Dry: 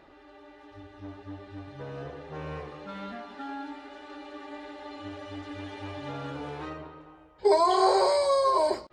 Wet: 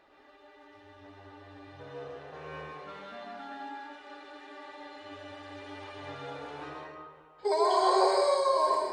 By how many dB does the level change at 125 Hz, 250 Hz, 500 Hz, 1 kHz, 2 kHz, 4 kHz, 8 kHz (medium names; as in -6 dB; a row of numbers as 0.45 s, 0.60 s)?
-10.0 dB, -5.5 dB, -3.0 dB, -2.0 dB, -1.0 dB, -2.0 dB, -2.0 dB